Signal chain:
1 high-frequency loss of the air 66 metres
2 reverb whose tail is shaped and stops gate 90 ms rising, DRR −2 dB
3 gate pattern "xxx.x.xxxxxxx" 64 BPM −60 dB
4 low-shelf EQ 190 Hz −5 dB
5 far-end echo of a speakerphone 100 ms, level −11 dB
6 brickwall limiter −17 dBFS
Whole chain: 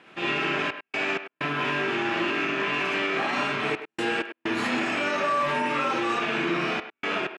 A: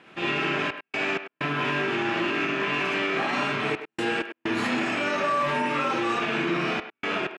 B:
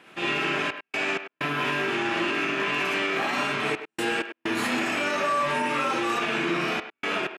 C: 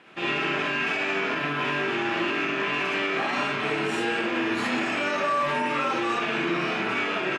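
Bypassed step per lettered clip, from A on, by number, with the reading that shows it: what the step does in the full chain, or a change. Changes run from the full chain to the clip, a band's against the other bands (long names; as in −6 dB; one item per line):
4, 125 Hz band +3.0 dB
1, 8 kHz band +5.5 dB
3, change in momentary loudness spread −3 LU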